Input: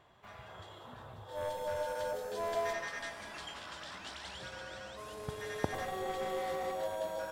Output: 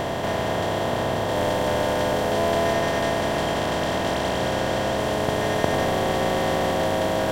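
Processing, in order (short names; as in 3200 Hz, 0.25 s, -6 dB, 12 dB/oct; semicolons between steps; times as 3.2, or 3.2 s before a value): per-bin compression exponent 0.2; gain +7 dB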